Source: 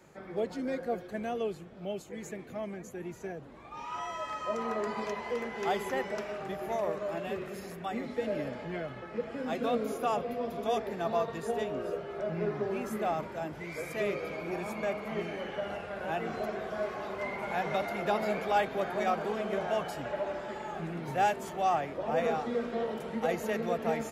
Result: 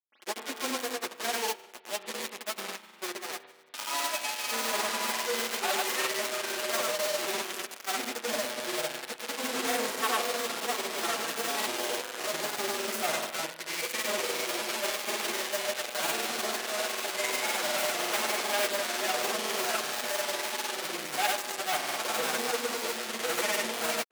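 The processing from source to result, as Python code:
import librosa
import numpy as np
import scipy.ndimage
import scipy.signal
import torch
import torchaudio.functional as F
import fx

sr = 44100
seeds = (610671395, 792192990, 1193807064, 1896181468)

p1 = fx.lower_of_two(x, sr, delay_ms=8.2)
p2 = fx.high_shelf(p1, sr, hz=5600.0, db=-9.0)
p3 = fx.quant_companded(p2, sr, bits=2)
p4 = scipy.signal.sosfilt(scipy.signal.bessel(4, 310.0, 'highpass', norm='mag', fs=sr, output='sos'), p3)
p5 = fx.high_shelf(p4, sr, hz=2100.0, db=10.5)
p6 = p5 + fx.echo_single(p5, sr, ms=230, db=-18.0, dry=0)
p7 = fx.rev_spring(p6, sr, rt60_s=1.1, pass_ms=(31,), chirp_ms=45, drr_db=6.0)
p8 = fx.granulator(p7, sr, seeds[0], grain_ms=100.0, per_s=20.0, spray_ms=100.0, spread_st=0)
p9 = fx.upward_expand(p8, sr, threshold_db=-42.0, expansion=1.5)
y = F.gain(torch.from_numpy(p9), -2.5).numpy()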